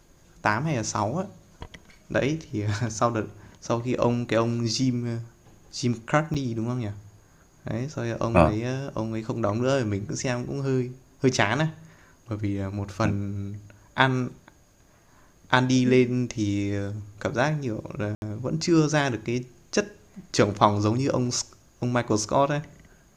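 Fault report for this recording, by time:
6.34–6.35 s: dropout 7.3 ms
18.15–18.22 s: dropout 71 ms

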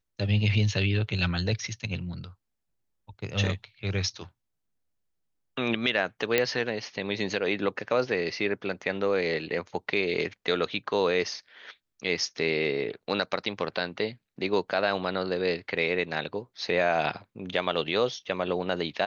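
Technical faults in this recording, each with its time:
6.38 s: pop -8 dBFS

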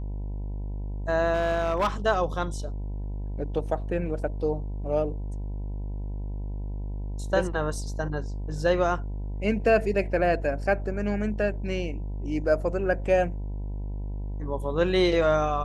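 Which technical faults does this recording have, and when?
buzz 50 Hz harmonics 20 -32 dBFS
1.33–1.88 s: clipped -19.5 dBFS

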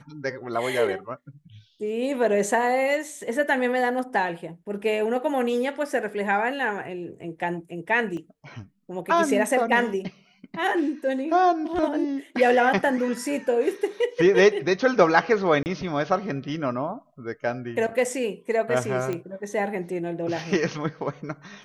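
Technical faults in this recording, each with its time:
8.17 s: dropout 2.2 ms
15.63–15.66 s: dropout 29 ms
19.13 s: pop -17 dBFS

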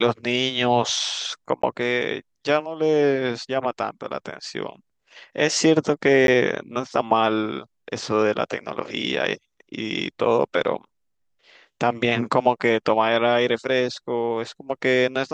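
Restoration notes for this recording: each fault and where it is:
1.62–1.63 s: dropout 14 ms
6.27–6.28 s: dropout 12 ms

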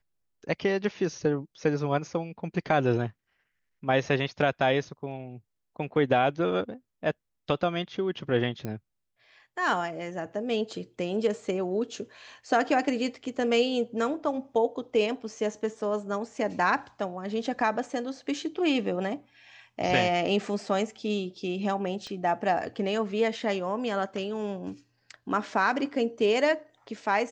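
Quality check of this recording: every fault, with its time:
8.65 s: pop -21 dBFS
22.07 s: pop -27 dBFS

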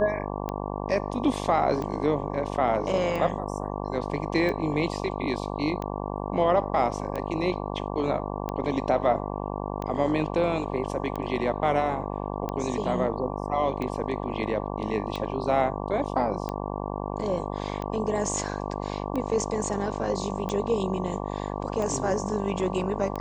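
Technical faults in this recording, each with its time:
buzz 50 Hz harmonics 23 -32 dBFS
tick 45 rpm -19 dBFS

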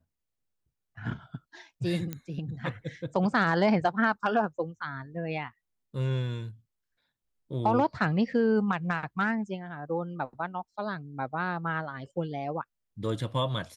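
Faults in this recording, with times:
2.13 s: pop -20 dBFS

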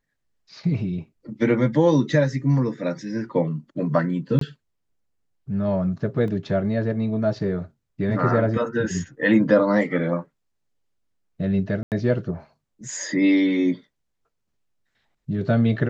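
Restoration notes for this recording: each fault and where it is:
4.39–4.41 s: dropout 23 ms
6.28 s: dropout 2 ms
11.83–11.92 s: dropout 88 ms

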